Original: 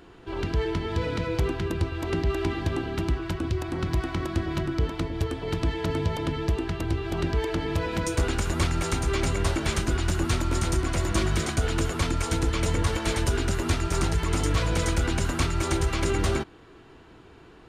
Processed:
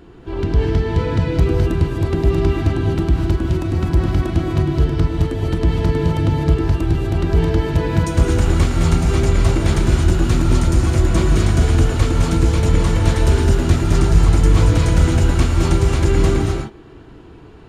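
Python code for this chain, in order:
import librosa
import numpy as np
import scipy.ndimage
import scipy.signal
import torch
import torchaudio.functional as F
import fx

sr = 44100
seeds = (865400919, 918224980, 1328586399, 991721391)

y = fx.low_shelf(x, sr, hz=490.0, db=10.0)
y = fx.rev_gated(y, sr, seeds[0], gate_ms=280, shape='rising', drr_db=0.5)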